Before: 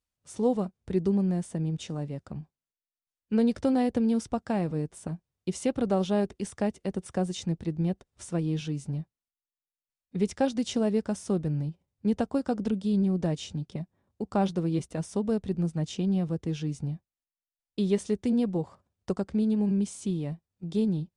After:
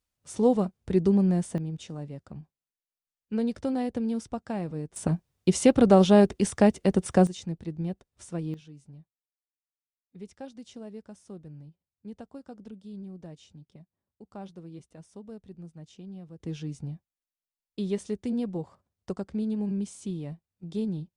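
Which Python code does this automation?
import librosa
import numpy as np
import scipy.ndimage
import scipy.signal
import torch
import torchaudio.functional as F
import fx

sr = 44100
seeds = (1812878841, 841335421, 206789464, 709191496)

y = fx.gain(x, sr, db=fx.steps((0.0, 3.5), (1.58, -4.0), (4.96, 8.5), (7.27, -4.0), (8.54, -16.0), (16.4, -4.0)))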